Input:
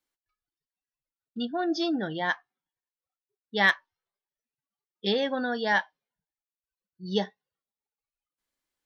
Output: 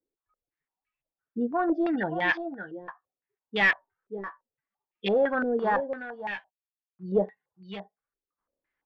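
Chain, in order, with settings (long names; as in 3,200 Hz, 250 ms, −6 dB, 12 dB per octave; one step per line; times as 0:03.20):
0:05.15–0:07.03: variable-slope delta modulation 64 kbit/s
hard clipping −23 dBFS, distortion −10 dB
multi-tap delay 573/588 ms −12.5/−19.5 dB
low-pass on a step sequencer 5.9 Hz 420–2,500 Hz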